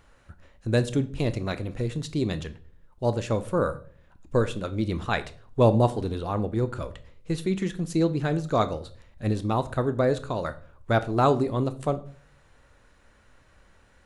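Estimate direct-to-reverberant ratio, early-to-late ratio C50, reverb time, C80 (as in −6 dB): 11.5 dB, 17.0 dB, 0.45 s, 21.0 dB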